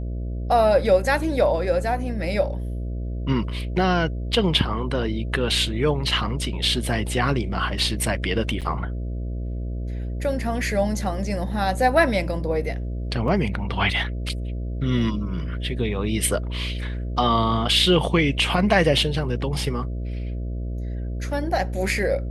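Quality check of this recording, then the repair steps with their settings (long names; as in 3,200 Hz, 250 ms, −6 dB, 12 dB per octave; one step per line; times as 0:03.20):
mains buzz 60 Hz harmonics 11 −28 dBFS
0:08.61–0:08.62: drop-out 7.6 ms
0:13.28: drop-out 2.3 ms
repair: hum removal 60 Hz, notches 11
repair the gap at 0:08.61, 7.6 ms
repair the gap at 0:13.28, 2.3 ms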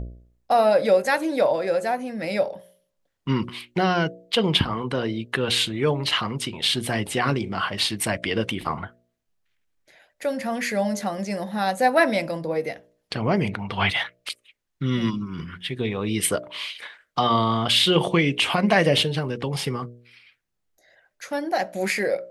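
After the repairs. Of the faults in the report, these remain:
none of them is left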